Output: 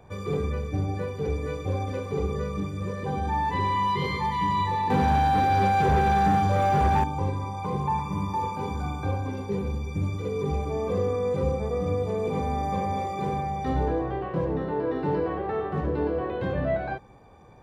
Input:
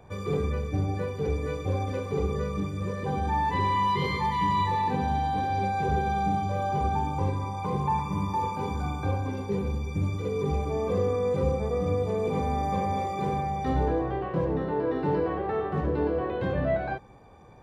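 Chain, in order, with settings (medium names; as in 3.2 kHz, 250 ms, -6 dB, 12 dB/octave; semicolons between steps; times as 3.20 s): 4.90–7.04 s: waveshaping leveller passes 2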